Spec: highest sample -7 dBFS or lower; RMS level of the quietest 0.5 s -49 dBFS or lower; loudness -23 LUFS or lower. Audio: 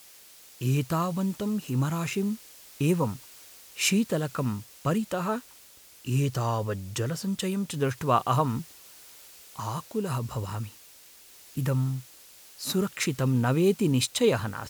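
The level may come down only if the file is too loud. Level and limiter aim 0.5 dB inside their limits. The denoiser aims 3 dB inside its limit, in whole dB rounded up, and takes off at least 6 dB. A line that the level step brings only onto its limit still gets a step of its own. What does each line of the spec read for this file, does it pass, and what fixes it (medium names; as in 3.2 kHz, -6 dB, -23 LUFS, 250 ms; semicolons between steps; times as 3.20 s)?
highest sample -10.0 dBFS: pass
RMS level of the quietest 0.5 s -53 dBFS: pass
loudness -28.0 LUFS: pass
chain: none needed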